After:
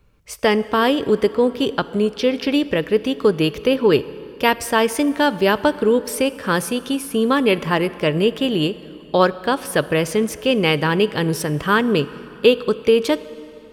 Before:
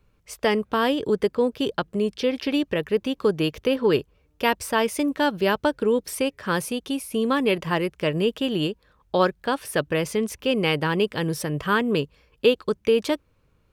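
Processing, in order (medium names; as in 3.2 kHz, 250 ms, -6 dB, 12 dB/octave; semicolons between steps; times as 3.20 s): plate-style reverb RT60 3.1 s, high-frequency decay 0.75×, DRR 15.5 dB; trim +5 dB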